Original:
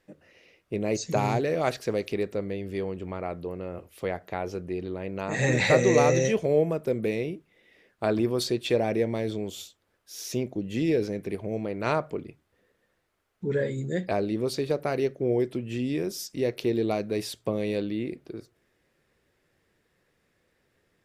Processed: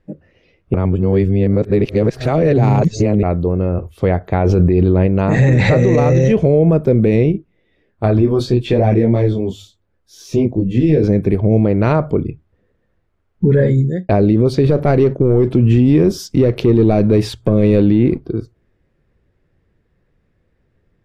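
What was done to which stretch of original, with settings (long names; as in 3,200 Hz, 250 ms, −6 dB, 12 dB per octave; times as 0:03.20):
0:00.74–0:03.23: reverse
0:04.45–0:05.07: envelope flattener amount 70%
0:07.32–0:11.04: micro pitch shift up and down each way 22 cents
0:13.64–0:14.09: fade out
0:14.64–0:18.20: leveller curve on the samples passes 1
whole clip: noise reduction from a noise print of the clip's start 11 dB; RIAA equalisation playback; boost into a limiter +15.5 dB; level −3.5 dB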